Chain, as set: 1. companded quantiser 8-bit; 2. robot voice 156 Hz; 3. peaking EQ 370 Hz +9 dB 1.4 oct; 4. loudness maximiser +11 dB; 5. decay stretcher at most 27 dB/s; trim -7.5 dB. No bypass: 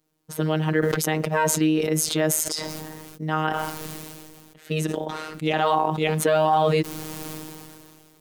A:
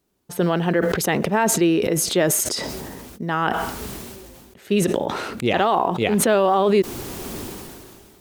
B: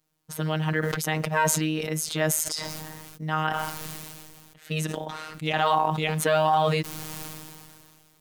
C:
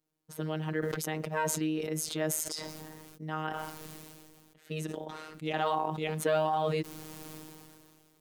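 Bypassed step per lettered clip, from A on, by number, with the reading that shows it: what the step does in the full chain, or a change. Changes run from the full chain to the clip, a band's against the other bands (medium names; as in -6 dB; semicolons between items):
2, 125 Hz band -3.0 dB; 3, 250 Hz band -4.0 dB; 4, momentary loudness spread change +1 LU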